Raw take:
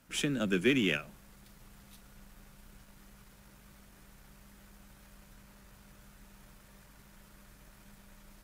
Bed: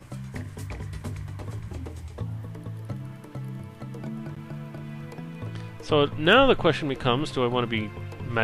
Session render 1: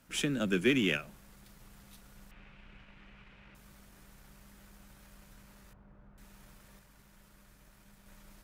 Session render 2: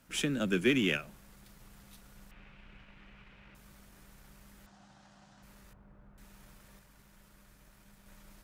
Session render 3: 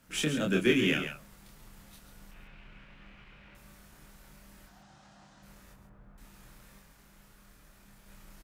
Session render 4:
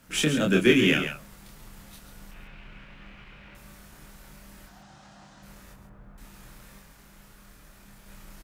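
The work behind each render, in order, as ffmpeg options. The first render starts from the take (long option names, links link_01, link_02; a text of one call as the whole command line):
ffmpeg -i in.wav -filter_complex "[0:a]asettb=1/sr,asplit=3[link_01][link_02][link_03];[link_01]atrim=end=2.314[link_04];[link_02]atrim=start=2.31:end=3.55,asetpts=PTS-STARTPTS,afade=type=in:duration=0.004:curve=qsin,afade=type=out:start_time=1.236:duration=0.004:curve=qsin,lowpass=frequency=2600:width_type=q:width=2.9[link_05];[link_03]atrim=start=3.546[link_06];[link_04][link_05]acrossfade=duration=0.004:curve1=hsin:curve2=qsin[link_07];[link_07][link_06]acrossfade=duration=0.004:curve1=qsin:curve2=hsin,asettb=1/sr,asplit=3[link_08][link_09][link_10];[link_08]atrim=end=5.734[link_11];[link_09]atrim=start=5.73:end=6.18,asetpts=PTS-STARTPTS,afade=type=in:duration=0.004:curve=qsin,afade=type=out:start_time=0.446:duration=0.004:curve=qsin,lowpass=1100[link_12];[link_10]atrim=start=6.176[link_13];[link_11][link_12]acrossfade=duration=0.004:curve1=hsin:curve2=qsin[link_14];[link_14][link_13]acrossfade=duration=0.004:curve1=qsin:curve2=hsin,asplit=3[link_15][link_16][link_17];[link_15]atrim=end=6.792[link_18];[link_16]atrim=start=6.788:end=8.062,asetpts=PTS-STARTPTS,volume=-3.5dB[link_19];[link_17]atrim=start=8.058[link_20];[link_18][link_19]acrossfade=duration=0.004:curve1=hsin:curve2=hsin[link_21];[link_21][link_20]acrossfade=duration=0.004:curve1=hsin:curve2=hsin" out.wav
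ffmpeg -i in.wav -filter_complex "[0:a]asettb=1/sr,asplit=3[link_01][link_02][link_03];[link_01]atrim=end=4.664[link_04];[link_02]atrim=start=4.66:end=5.43,asetpts=PTS-STARTPTS,afade=type=in:duration=0.004:curve=qsin,afade=type=out:start_time=0.766:duration=0.004:curve=qsin,highpass=100,equalizer=frequency=440:width_type=q:width=4:gain=-10,equalizer=frequency=760:width_type=q:width=4:gain=10,equalizer=frequency=2300:width_type=q:width=4:gain=-7,lowpass=frequency=6800:width=0.5412,lowpass=frequency=6800:width=1.3066[link_05];[link_03]atrim=start=5.426[link_06];[link_04][link_05]acrossfade=duration=0.004:curve1=hsin:curve2=qsin[link_07];[link_07][link_06]acrossfade=duration=0.004:curve1=qsin:curve2=hsin" out.wav
ffmpeg -i in.wav -filter_complex "[0:a]asplit=2[link_01][link_02];[link_02]adelay=26,volume=-2.5dB[link_03];[link_01][link_03]amix=inputs=2:normalize=0,asplit=2[link_04][link_05];[link_05]aecho=0:1:137:0.376[link_06];[link_04][link_06]amix=inputs=2:normalize=0" out.wav
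ffmpeg -i in.wav -af "volume=6dB" out.wav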